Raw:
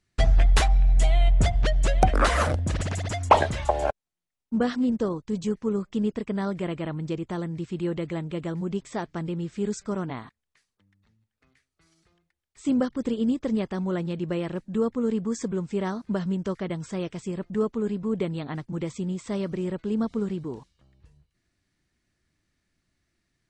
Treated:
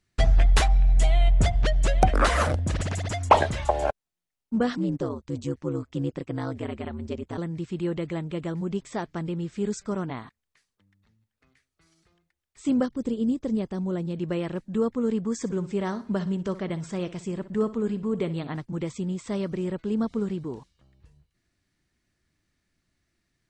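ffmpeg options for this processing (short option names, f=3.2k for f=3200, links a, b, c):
-filter_complex "[0:a]asettb=1/sr,asplit=3[a][b][c];[a]atrim=end=4.774[d];[b]atrim=start=4.77:end=7.38,asetpts=PTS-STARTPTS,afade=t=in:d=0.004:c=qsin,afade=t=out:st=2.606:d=0.004:c=qsin,aeval=exprs='val(0)*sin(2*PI*70*n/s)':c=same[e];[c]atrim=start=7.376[f];[d][e]acrossfade=d=0.004:c1=hsin:c2=qsin[g];[g][f]acrossfade=d=0.004:c1=qsin:c2=hsin,asettb=1/sr,asplit=3[h][i][j];[h]atrim=end=12.864[k];[i]atrim=start=12.86:end=14.16,asetpts=PTS-STARTPTS,afade=t=in:d=0.004:c=qsin,afade=t=out:st=1.296:d=0.004:c=qsin,equalizer=f=1.8k:w=0.49:g=-8[l];[j]atrim=start=14.156[m];[k][l]acrossfade=d=0.004:c1=hsin:c2=qsin[n];[n][m]acrossfade=d=0.004:c1=qsin:c2=hsin,asettb=1/sr,asplit=3[o][p][q];[o]atrim=end=15.394[r];[p]atrim=start=15.39:end=18.57,asetpts=PTS-STARTPTS,afade=t=in:d=0.004:c=qsin,afade=t=out:st=3.176:d=0.004:c=qsin,aecho=1:1:61|122|183:0.178|0.0676|0.0257,atrim=end_sample=140238[s];[q]atrim=start=18.566[t];[r][s]acrossfade=d=0.004:c1=hsin:c2=qsin[u];[u][t]acrossfade=d=0.004:c1=qsin:c2=hsin"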